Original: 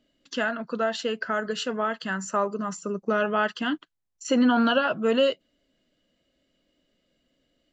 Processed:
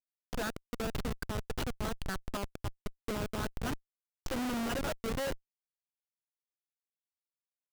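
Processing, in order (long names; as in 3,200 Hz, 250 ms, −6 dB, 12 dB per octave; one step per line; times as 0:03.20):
harmonic and percussive parts rebalanced harmonic −8 dB
comparator with hysteresis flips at −27 dBFS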